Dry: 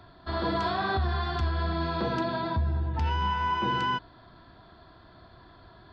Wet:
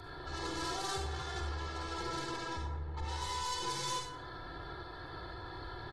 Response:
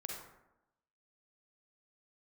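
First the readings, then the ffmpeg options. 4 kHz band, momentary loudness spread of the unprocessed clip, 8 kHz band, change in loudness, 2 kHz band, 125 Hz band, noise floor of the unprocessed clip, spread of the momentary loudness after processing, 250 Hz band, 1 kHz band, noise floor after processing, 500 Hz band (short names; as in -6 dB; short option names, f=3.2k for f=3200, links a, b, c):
-3.5 dB, 3 LU, n/a, -10.5 dB, -9.0 dB, -12.0 dB, -54 dBFS, 10 LU, -11.5 dB, -10.0 dB, -47 dBFS, -10.0 dB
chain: -filter_complex "[0:a]highshelf=f=3k:t=q:w=1.5:g=-10,aeval=exprs='(tanh(39.8*val(0)+0.6)-tanh(0.6))/39.8':c=same,asplit=2[a][b];[b]acompressor=threshold=-49dB:ratio=6,volume=0.5dB[c];[a][c]amix=inputs=2:normalize=0,alimiter=level_in=13.5dB:limit=-24dB:level=0:latency=1:release=145,volume=-13.5dB,aecho=1:1:2.3:0.73,aexciter=amount=6.6:drive=6.8:freq=3.7k[d];[1:a]atrim=start_sample=2205,asetrate=43659,aresample=44100[e];[d][e]afir=irnorm=-1:irlink=0,volume=3dB" -ar 48000 -c:a aac -b:a 32k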